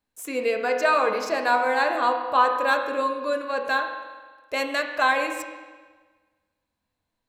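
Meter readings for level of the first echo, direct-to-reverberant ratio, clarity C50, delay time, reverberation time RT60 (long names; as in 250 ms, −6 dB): no echo audible, 3.0 dB, 5.5 dB, no echo audible, 1.4 s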